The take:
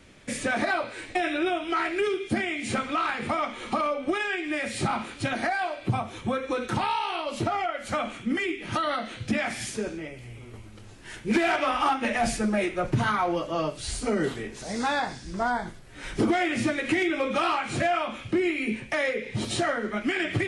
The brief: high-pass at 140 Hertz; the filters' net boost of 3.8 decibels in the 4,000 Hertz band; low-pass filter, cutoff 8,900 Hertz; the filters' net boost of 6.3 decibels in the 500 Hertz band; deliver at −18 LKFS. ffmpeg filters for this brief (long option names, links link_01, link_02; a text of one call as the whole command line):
ffmpeg -i in.wav -af "highpass=140,lowpass=8900,equalizer=frequency=500:width_type=o:gain=8.5,equalizer=frequency=4000:width_type=o:gain=5,volume=6.5dB" out.wav